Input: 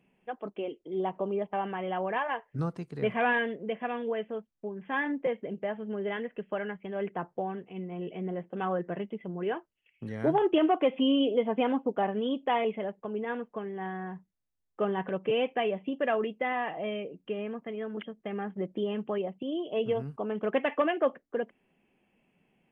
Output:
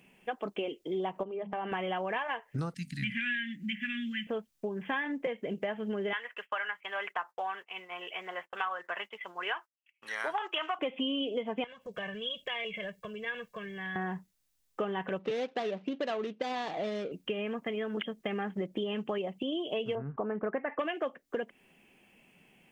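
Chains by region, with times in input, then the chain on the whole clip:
1.23–1.72 s: low-pass 1.8 kHz 6 dB/octave + hum notches 50/100/150/200/250 Hz + compression 3:1, threshold -39 dBFS
2.74–4.27 s: elliptic band-stop 240–1800 Hz + hum notches 50/100/150/200/250 Hz
6.13–10.79 s: resonant high-pass 1.1 kHz, resonance Q 1.8 + expander -56 dBFS
11.64–13.96 s: high-order bell 550 Hz -12 dB 2.7 oct + compression 4:1, threshold -44 dBFS + comb 1.8 ms, depth 86%
15.19–17.12 s: median filter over 25 samples + high-pass 140 Hz + distance through air 160 m
19.95–20.79 s: steep low-pass 1.9 kHz + upward compressor, threshold -43 dBFS
whole clip: treble shelf 2 kHz +12 dB; compression 6:1, threshold -36 dBFS; trim +5 dB

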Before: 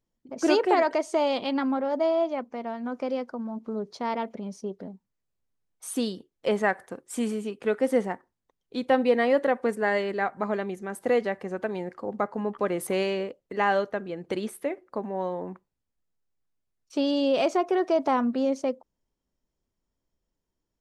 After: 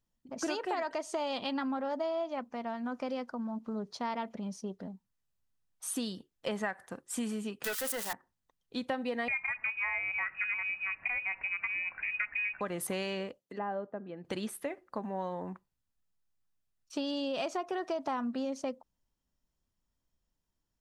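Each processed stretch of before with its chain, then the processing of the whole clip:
7.64–8.13 s: zero-crossing glitches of -20.5 dBFS + high-pass 1.4 kHz 6 dB/octave + waveshaping leveller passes 3
9.28–12.61 s: zero-crossing glitches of -28 dBFS + tilt EQ -2 dB/octave + frequency inversion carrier 2.7 kHz
13.38–14.25 s: high-pass 210 Hz + peaking EQ 1.3 kHz -6.5 dB 2.8 oct + low-pass that closes with the level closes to 900 Hz, closed at -29.5 dBFS
whole clip: peaking EQ 410 Hz -8 dB 1.3 oct; band-stop 2.2 kHz, Q 14; compression, threshold -31 dBFS

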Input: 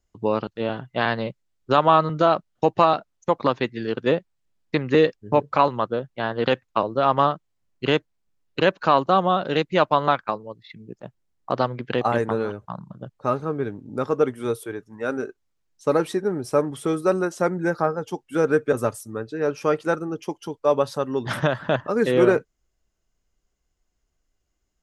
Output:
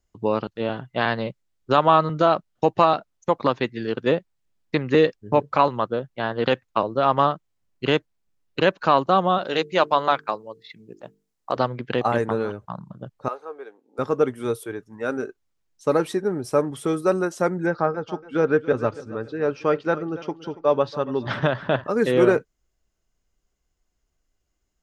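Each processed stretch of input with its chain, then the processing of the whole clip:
9.38–11.57 s: tone controls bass -8 dB, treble +5 dB + hum notches 50/100/150/200/250/300/350/400/450 Hz
13.28–13.99 s: ladder high-pass 460 Hz, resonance 40% + band-stop 600 Hz, Q 6.2
17.66–21.84 s: low-pass 4.8 kHz 24 dB/octave + feedback delay 282 ms, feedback 39%, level -17 dB
whole clip: none

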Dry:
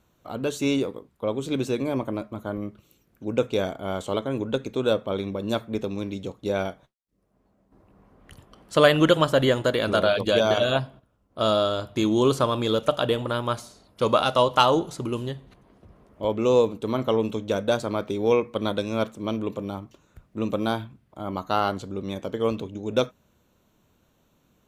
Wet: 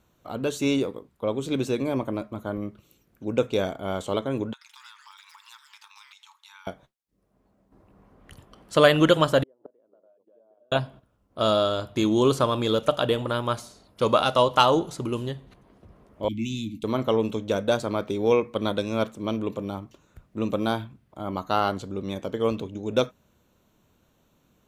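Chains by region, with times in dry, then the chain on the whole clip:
4.53–6.67 s: brick-wall FIR high-pass 830 Hz + compression 5:1, threshold -47 dBFS + ever faster or slower copies 82 ms, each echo +6 st, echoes 3, each echo -6 dB
9.43–10.72 s: inverted gate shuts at -16 dBFS, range -38 dB + Butterworth band-pass 460 Hz, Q 0.94
16.28–16.84 s: Chebyshev band-stop 310–2100 Hz, order 5 + doubling 18 ms -12.5 dB
whole clip: none

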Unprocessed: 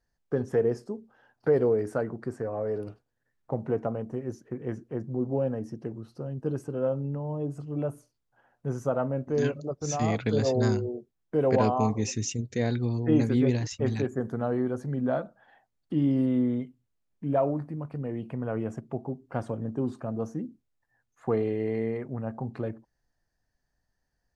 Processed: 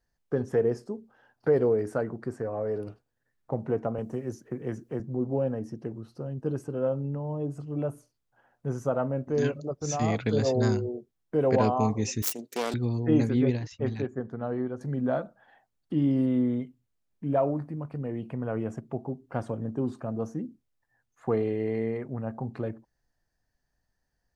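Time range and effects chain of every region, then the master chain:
3.98–5.00 s: treble shelf 5.4 kHz +8.5 dB + three bands compressed up and down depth 40%
12.22–12.74 s: self-modulated delay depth 0.62 ms + high-pass 270 Hz 24 dB/octave + treble shelf 5.3 kHz +6.5 dB
13.30–14.81 s: low-pass 4.8 kHz + upward expansion, over -32 dBFS
whole clip: none

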